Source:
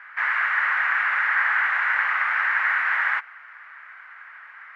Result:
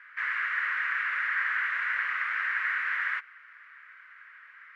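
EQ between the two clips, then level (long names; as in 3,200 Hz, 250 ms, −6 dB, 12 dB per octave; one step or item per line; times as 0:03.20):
phaser with its sweep stopped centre 320 Hz, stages 4
−4.5 dB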